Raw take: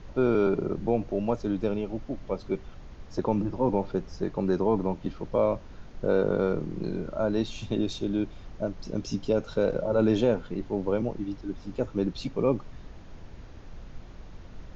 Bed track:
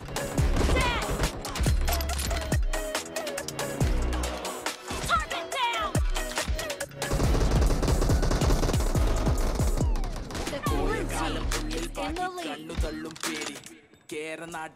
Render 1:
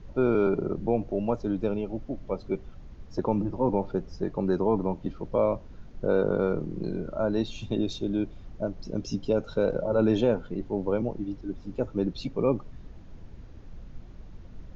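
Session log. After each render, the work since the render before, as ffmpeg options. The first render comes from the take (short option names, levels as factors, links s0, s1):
-af "afftdn=nr=7:nf=-46"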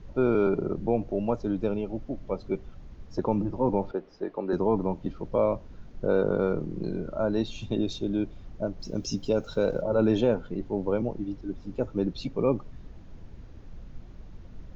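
-filter_complex "[0:a]asettb=1/sr,asplit=3[s0][s1][s2];[s0]atrim=end=3.914[s3];[s1]atrim=start=3.91:end=4.53,asetpts=PTS-STARTPTS,afade=t=in:d=0.004:c=qsin,afade=t=out:st=0.616:d=0.004:c=qsin,acrossover=split=260 4500:gain=0.0891 1 0.0891[s4][s5][s6];[s4][s5][s6]amix=inputs=3:normalize=0[s7];[s2]atrim=start=4.526[s8];[s3][s7]acrossfade=d=0.004:c1=hsin:c2=qsin[s9];[s9][s8]acrossfade=d=0.004:c1=qsin:c2=hsin,asettb=1/sr,asplit=3[s10][s11][s12];[s10]atrim=end=8.804[s13];[s11]atrim=start=8.8:end=9.82,asetpts=PTS-STARTPTS,afade=t=in:d=0.004:c=qsin,afade=t=out:st=1.016:d=0.004:c=qsin,aemphasis=mode=production:type=50fm[s14];[s12]atrim=start=9.816[s15];[s13][s14]acrossfade=d=0.004:c1=hsin:c2=qsin[s16];[s16][s15]acrossfade=d=0.004:c1=qsin:c2=hsin"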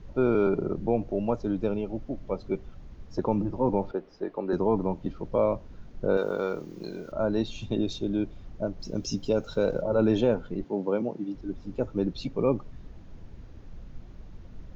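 -filter_complex "[0:a]asettb=1/sr,asplit=3[s0][s1][s2];[s0]atrim=end=6.174[s3];[s1]atrim=start=6.17:end=7.12,asetpts=PTS-STARTPTS,afade=t=in:d=0.004:c=qsin,afade=t=out:st=0.946:d=0.004:c=qsin,aemphasis=mode=production:type=riaa[s4];[s2]atrim=start=7.116[s5];[s3][s4]acrossfade=d=0.004:c1=hsin:c2=qsin[s6];[s6][s5]acrossfade=d=0.004:c1=qsin:c2=hsin,asettb=1/sr,asplit=3[s7][s8][s9];[s7]atrim=end=10.644[s10];[s8]atrim=start=10.64:end=11.35,asetpts=PTS-STARTPTS,afade=t=in:d=0.004:c=qsin,afade=t=out:st=0.706:d=0.004:c=qsin,highpass=f=150:w=0.5412,highpass=f=150:w=1.3066[s11];[s9]atrim=start=11.346[s12];[s10][s11]acrossfade=d=0.004:c1=hsin:c2=qsin[s13];[s13][s12]acrossfade=d=0.004:c1=qsin:c2=hsin"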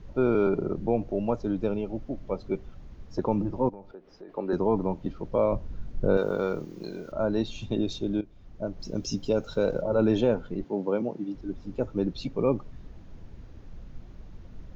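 -filter_complex "[0:a]asplit=3[s0][s1][s2];[s0]afade=t=out:st=3.68:d=0.02[s3];[s1]acompressor=threshold=0.00562:ratio=3:attack=3.2:release=140:knee=1:detection=peak,afade=t=in:st=3.68:d=0.02,afade=t=out:st=4.28:d=0.02[s4];[s2]afade=t=in:st=4.28:d=0.02[s5];[s3][s4][s5]amix=inputs=3:normalize=0,asettb=1/sr,asplit=3[s6][s7][s8];[s6]atrim=end=5.524[s9];[s7]atrim=start=5.52:end=6.65,asetpts=PTS-STARTPTS,afade=t=in:d=0.004:c=qsin,afade=t=out:st=1.126:d=0.004:c=qsin,lowshelf=f=160:g=10[s10];[s8]atrim=start=6.646[s11];[s9][s10]acrossfade=d=0.004:c1=hsin:c2=qsin[s12];[s12][s11]acrossfade=d=0.004:c1=qsin:c2=hsin,asplit=2[s13][s14];[s13]atrim=end=8.21,asetpts=PTS-STARTPTS,afade=t=out:st=8.206:d=0.004:c=hsin:silence=0.158489[s15];[s14]atrim=start=8.21,asetpts=PTS-STARTPTS,afade=t=in:d=0.59:silence=0.158489[s16];[s15][s16]concat=n=2:v=0:a=1"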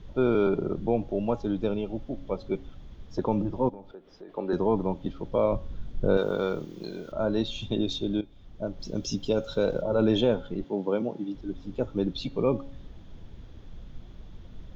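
-af "equalizer=f=3400:w=5.1:g=11,bandreject=f=275.8:t=h:w=4,bandreject=f=551.6:t=h:w=4,bandreject=f=827.4:t=h:w=4,bandreject=f=1103.2:t=h:w=4,bandreject=f=1379:t=h:w=4,bandreject=f=1654.8:t=h:w=4,bandreject=f=1930.6:t=h:w=4,bandreject=f=2206.4:t=h:w=4,bandreject=f=2482.2:t=h:w=4,bandreject=f=2758:t=h:w=4,bandreject=f=3033.8:t=h:w=4,bandreject=f=3309.6:t=h:w=4,bandreject=f=3585.4:t=h:w=4,bandreject=f=3861.2:t=h:w=4,bandreject=f=4137:t=h:w=4,bandreject=f=4412.8:t=h:w=4"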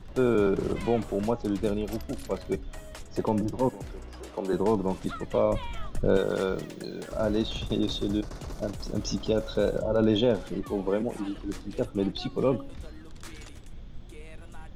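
-filter_complex "[1:a]volume=0.178[s0];[0:a][s0]amix=inputs=2:normalize=0"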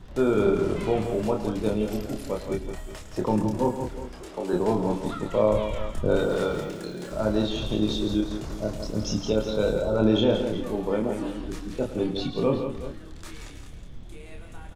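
-filter_complex "[0:a]asplit=2[s0][s1];[s1]adelay=28,volume=0.631[s2];[s0][s2]amix=inputs=2:normalize=0,aecho=1:1:107|168|370:0.211|0.398|0.188"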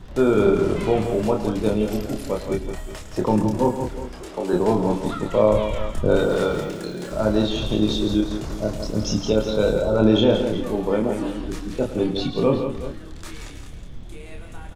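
-af "volume=1.68"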